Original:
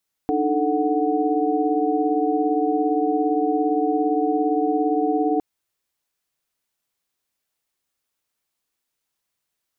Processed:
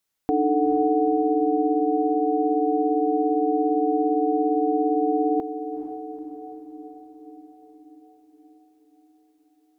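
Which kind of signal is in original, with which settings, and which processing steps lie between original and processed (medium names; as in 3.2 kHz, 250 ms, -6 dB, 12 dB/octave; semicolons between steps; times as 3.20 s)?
chord D4/D#4/A4/F#5 sine, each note -23.5 dBFS 5.11 s
echo that smears into a reverb 453 ms, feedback 61%, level -9 dB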